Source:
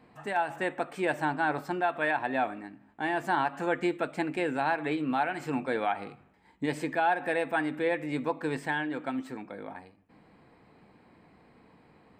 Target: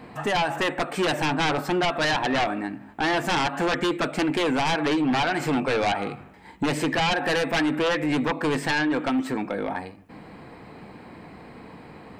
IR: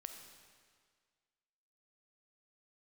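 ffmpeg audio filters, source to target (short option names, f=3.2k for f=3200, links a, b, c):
-filter_complex "[0:a]asplit=2[a][b];[b]acompressor=threshold=-38dB:ratio=6,volume=-1dB[c];[a][c]amix=inputs=2:normalize=0,aeval=exprs='0.188*sin(PI/2*3.16*val(0)/0.188)':c=same,volume=-4.5dB"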